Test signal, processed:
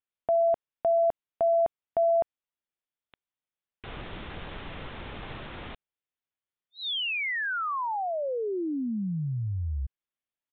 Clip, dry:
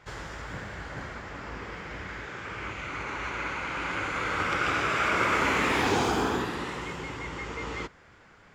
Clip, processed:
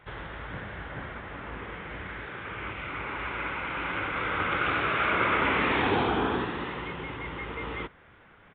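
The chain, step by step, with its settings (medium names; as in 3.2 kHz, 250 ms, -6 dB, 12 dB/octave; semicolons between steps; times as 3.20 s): resampled via 8 kHz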